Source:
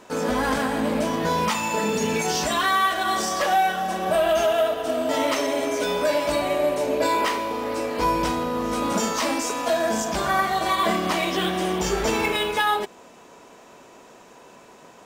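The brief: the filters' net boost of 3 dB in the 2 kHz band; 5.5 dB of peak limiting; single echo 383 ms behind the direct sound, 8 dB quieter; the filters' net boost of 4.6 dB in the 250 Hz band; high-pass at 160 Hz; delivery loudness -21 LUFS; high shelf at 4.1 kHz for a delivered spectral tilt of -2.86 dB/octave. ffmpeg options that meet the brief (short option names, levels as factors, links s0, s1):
-af "highpass=160,equalizer=f=250:t=o:g=6.5,equalizer=f=2000:t=o:g=5.5,highshelf=f=4100:g=-8,alimiter=limit=0.211:level=0:latency=1,aecho=1:1:383:0.398,volume=1.12"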